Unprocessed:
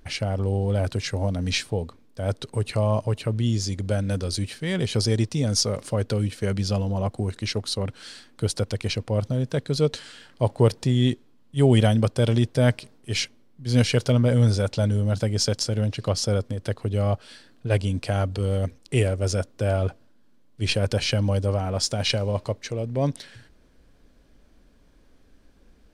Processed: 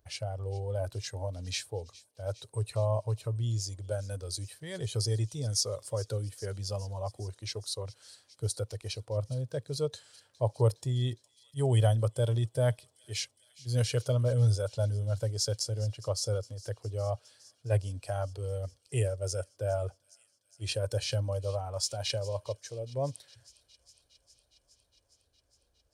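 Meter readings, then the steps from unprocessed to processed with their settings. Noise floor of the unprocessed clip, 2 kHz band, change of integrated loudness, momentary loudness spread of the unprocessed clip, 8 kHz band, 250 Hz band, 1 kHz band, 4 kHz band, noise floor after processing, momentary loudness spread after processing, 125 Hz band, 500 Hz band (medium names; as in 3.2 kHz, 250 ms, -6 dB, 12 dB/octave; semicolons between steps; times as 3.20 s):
-55 dBFS, -13.0 dB, -8.5 dB, 9 LU, -5.0 dB, -17.5 dB, -8.5 dB, -8.5 dB, -73 dBFS, 11 LU, -7.5 dB, -7.5 dB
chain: high-pass 75 Hz; spectral noise reduction 7 dB; FFT filter 110 Hz 0 dB, 210 Hz -20 dB, 580 Hz -2 dB, 2.1 kHz -11 dB, 10 kHz 0 dB; on a send: feedback echo behind a high-pass 411 ms, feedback 75%, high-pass 3.2 kHz, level -18 dB; on the sum: trim -2.5 dB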